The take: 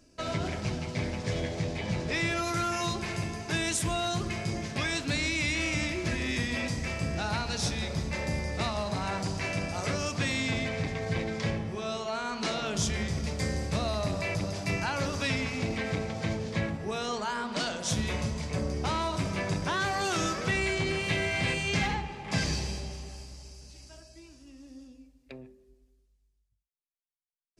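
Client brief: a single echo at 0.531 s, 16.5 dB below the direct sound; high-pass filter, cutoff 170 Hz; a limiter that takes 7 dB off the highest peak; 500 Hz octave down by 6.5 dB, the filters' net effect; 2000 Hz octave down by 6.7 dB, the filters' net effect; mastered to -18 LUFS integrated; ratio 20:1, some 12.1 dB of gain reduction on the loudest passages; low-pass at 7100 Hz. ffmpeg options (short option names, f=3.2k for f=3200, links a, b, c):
-af "highpass=170,lowpass=7.1k,equalizer=f=500:t=o:g=-8.5,equalizer=f=2k:t=o:g=-8,acompressor=threshold=-42dB:ratio=20,alimiter=level_in=13.5dB:limit=-24dB:level=0:latency=1,volume=-13.5dB,aecho=1:1:531:0.15,volume=29dB"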